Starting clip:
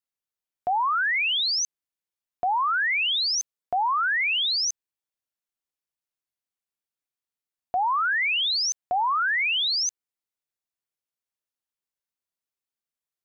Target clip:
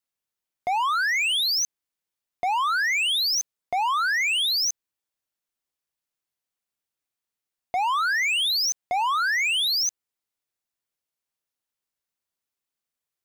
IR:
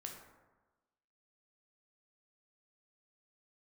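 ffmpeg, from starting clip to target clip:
-af "asoftclip=type=hard:threshold=0.0531,volume=1.5"

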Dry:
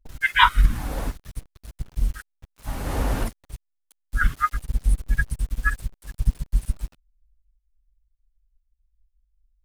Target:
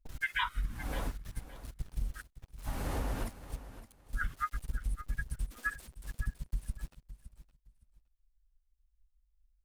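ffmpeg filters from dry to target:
-filter_complex "[0:a]asettb=1/sr,asplit=3[s0][s1][s2];[s0]atrim=end=5.464[s3];[s1]atrim=start=5.46:end=5.99,asetpts=PTS-STARTPTS,afade=t=in:d=0.004:c=qsin,afade=t=out:st=0.526:d=0.004:c=qsin,highpass=f=280:w=0.5412,highpass=f=280:w=1.3066[s4];[s2]atrim=start=5.986[s5];[s3][s4]acrossfade=d=0.004:c1=hsin:c2=qsin[s6];[s6][s5]acrossfade=d=0.004:c1=qsin:c2=hsin,acompressor=threshold=0.0562:ratio=6,asplit=2[s7][s8];[s8]aecho=0:1:565|1130:0.2|0.0419[s9];[s7][s9]amix=inputs=2:normalize=0,volume=0.531"

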